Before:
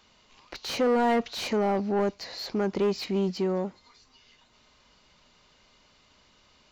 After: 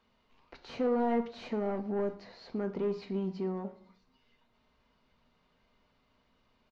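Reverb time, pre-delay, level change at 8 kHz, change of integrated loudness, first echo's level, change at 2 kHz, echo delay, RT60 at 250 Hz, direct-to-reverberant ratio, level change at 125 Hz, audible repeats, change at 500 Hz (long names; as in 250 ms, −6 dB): 0.50 s, 4 ms, below −20 dB, −6.0 dB, −21.0 dB, −12.0 dB, 113 ms, 0.75 s, 6.5 dB, −6.5 dB, 1, −6.5 dB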